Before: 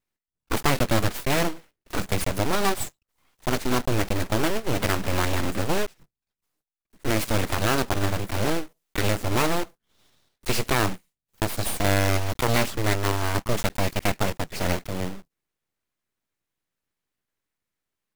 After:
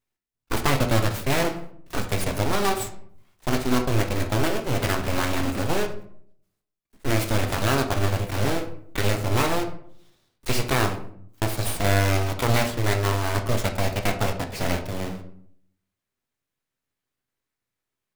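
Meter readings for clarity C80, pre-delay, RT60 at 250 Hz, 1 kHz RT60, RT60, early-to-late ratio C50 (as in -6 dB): 13.5 dB, 7 ms, 0.85 s, 0.55 s, 0.60 s, 10.0 dB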